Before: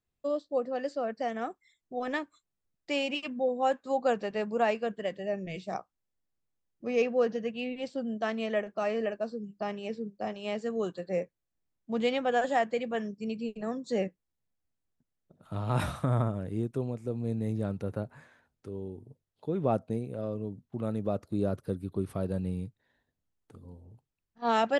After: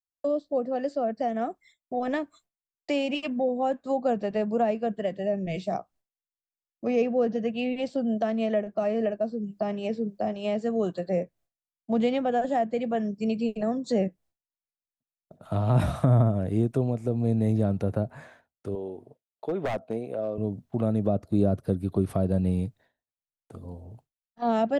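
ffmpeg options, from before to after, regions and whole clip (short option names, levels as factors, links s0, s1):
-filter_complex "[0:a]asettb=1/sr,asplit=3[s0][s1][s2];[s0]atrim=end=18.754[s3];[s1]atrim=start=18.75:end=20.38,asetpts=PTS-STARTPTS,afade=t=in:d=0.004:c=qsin,afade=t=out:st=1.626:d=0.004:c=qsin,highpass=92,bass=f=250:g=-14,treble=f=4000:g=-7,aeval=exprs='0.0422*(abs(mod(val(0)/0.0422+3,4)-2)-1)':c=same[s4];[s2]atrim=start=20.376[s5];[s3][s4]acrossfade=d=0.004:c1=hsin:c2=qsin[s6];[s6][s5]acrossfade=d=0.004:c1=qsin:c2=hsin,agate=range=0.0224:threshold=0.00141:ratio=3:detection=peak,equalizer=f=670:t=o:w=0.43:g=9.5,acrossover=split=340[s7][s8];[s8]acompressor=threshold=0.01:ratio=3[s9];[s7][s9]amix=inputs=2:normalize=0,volume=2.51"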